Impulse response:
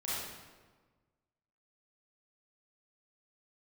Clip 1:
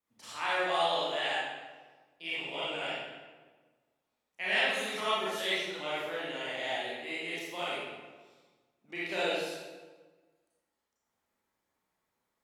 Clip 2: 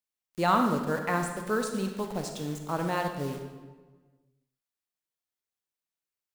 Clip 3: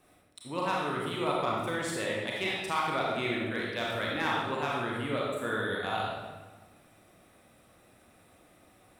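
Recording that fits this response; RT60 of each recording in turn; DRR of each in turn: 1; 1.4, 1.4, 1.4 seconds; −10.0, 4.0, −4.0 decibels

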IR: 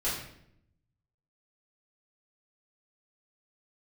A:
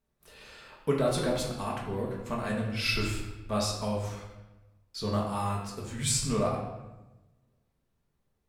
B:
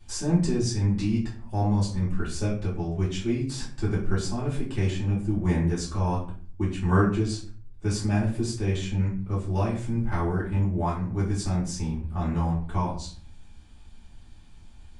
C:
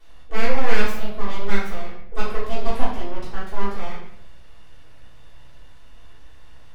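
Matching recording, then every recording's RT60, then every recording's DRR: C; 1.1, 0.45, 0.70 seconds; −3.0, −8.5, −11.0 decibels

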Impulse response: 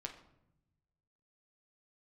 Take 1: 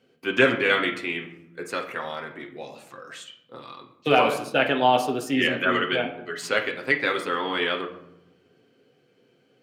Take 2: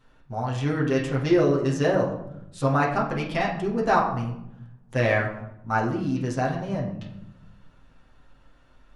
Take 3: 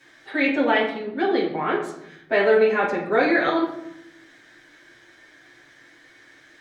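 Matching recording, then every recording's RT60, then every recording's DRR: 1; 0.80, 0.80, 0.80 seconds; 2.0, −4.5, −10.5 decibels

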